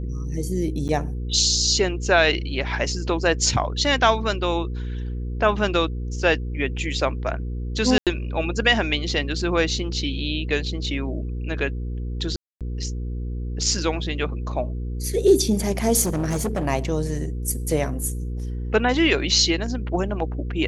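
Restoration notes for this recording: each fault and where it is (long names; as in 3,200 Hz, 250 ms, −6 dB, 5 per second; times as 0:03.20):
mains hum 60 Hz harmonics 8 −28 dBFS
0:00.88–0:00.89: drop-out 9.4 ms
0:07.98–0:08.07: drop-out 87 ms
0:12.36–0:12.61: drop-out 247 ms
0:16.02–0:16.67: clipping −20 dBFS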